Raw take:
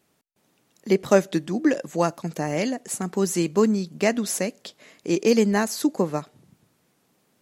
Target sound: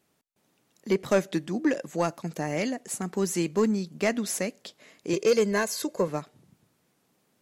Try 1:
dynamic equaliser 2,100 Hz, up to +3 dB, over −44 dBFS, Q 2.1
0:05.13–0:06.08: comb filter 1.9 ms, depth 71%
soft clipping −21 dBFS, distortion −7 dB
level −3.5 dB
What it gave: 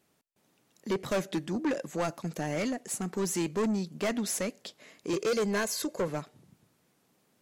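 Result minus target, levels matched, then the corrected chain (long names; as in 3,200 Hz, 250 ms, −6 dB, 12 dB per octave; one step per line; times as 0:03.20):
soft clipping: distortion +12 dB
dynamic equaliser 2,100 Hz, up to +3 dB, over −44 dBFS, Q 2.1
0:05.13–0:06.08: comb filter 1.9 ms, depth 71%
soft clipping −9.5 dBFS, distortion −19 dB
level −3.5 dB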